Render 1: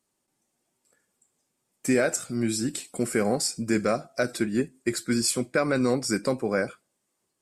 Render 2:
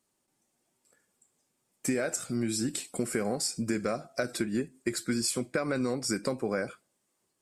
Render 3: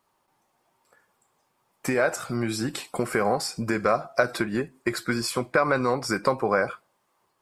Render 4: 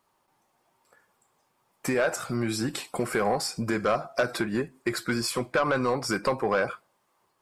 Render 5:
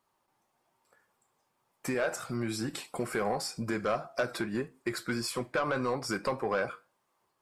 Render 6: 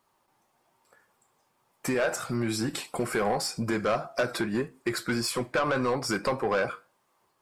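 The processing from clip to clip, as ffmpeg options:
ffmpeg -i in.wav -af "acompressor=threshold=-26dB:ratio=6" out.wav
ffmpeg -i in.wav -af "equalizer=frequency=250:width_type=o:width=1:gain=-6,equalizer=frequency=1000:width_type=o:width=1:gain=11,equalizer=frequency=8000:width_type=o:width=1:gain=-11,volume=6.5dB" out.wav
ffmpeg -i in.wav -af "asoftclip=type=tanh:threshold=-16dB" out.wav
ffmpeg -i in.wav -af "flanger=delay=7.4:depth=2.2:regen=-80:speed=1.7:shape=triangular,volume=-1dB" out.wav
ffmpeg -i in.wav -af "asoftclip=type=tanh:threshold=-23.5dB,volume=5.5dB" out.wav

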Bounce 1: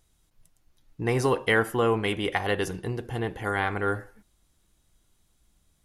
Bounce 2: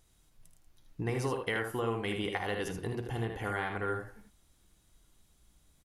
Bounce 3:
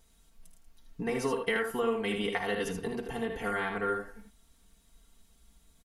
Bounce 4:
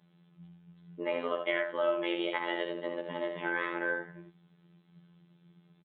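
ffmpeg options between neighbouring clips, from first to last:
ffmpeg -i in.wav -af "acompressor=threshold=-34dB:ratio=3,aecho=1:1:53|78:0.266|0.501" out.wav
ffmpeg -i in.wav -af "aecho=1:1:4.4:0.92" out.wav
ffmpeg -i in.wav -af "afreqshift=140,afftfilt=real='hypot(re,im)*cos(PI*b)':imag='0':win_size=2048:overlap=0.75,aresample=8000,aresample=44100,volume=2dB" out.wav

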